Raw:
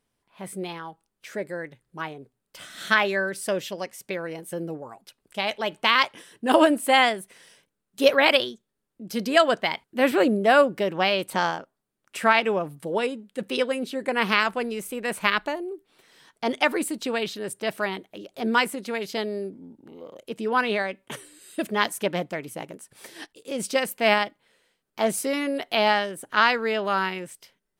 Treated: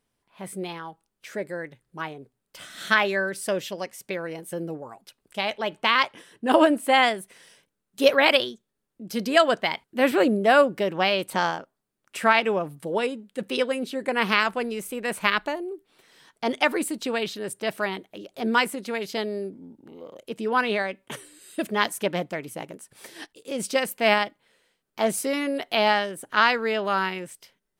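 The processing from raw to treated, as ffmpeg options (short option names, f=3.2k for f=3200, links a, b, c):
-filter_complex "[0:a]asettb=1/sr,asplit=3[a][b][c];[a]atrim=end=5.474[d];[b]atrim=start=5.47:end=7.03,asetpts=PTS-STARTPTS,afade=t=in:d=0.004:c=qsin,afade=t=out:st=1.556:d=0.004:c=qsin,highshelf=f=4.1k:g=-5.5[e];[c]atrim=start=7.026[f];[d][e]acrossfade=d=0.004:c1=hsin:c2=qsin[g];[g][f]acrossfade=d=0.004:c1=qsin:c2=hsin"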